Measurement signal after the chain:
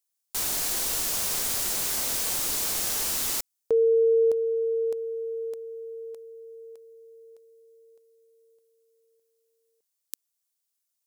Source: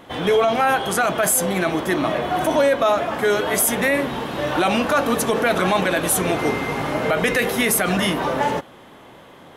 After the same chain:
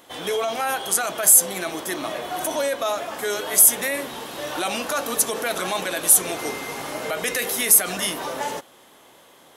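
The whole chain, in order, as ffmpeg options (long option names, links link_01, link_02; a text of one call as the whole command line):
ffmpeg -i in.wav -af "bass=frequency=250:gain=-9,treble=frequency=4000:gain=14,volume=-7dB" out.wav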